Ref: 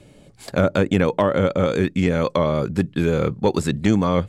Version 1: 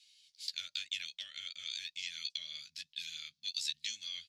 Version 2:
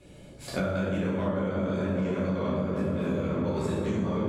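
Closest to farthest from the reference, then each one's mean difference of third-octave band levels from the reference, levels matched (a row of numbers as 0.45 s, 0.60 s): 2, 1; 7.0 dB, 20.5 dB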